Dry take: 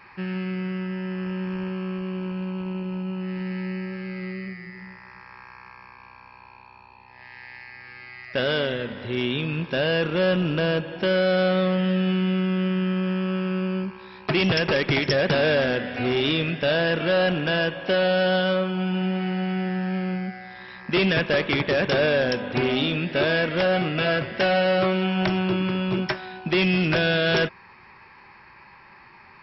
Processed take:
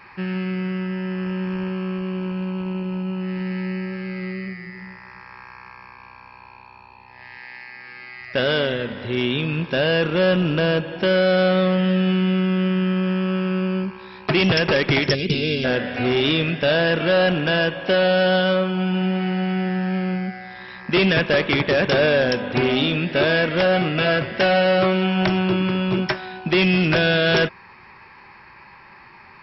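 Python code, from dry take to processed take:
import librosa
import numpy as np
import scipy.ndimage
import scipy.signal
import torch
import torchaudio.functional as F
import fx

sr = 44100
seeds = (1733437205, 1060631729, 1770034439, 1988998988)

y = fx.highpass(x, sr, hz=140.0, slope=24, at=(7.37, 8.21))
y = fx.spec_box(y, sr, start_s=15.14, length_s=0.5, low_hz=460.0, high_hz=2000.0, gain_db=-22)
y = F.gain(torch.from_numpy(y), 3.5).numpy()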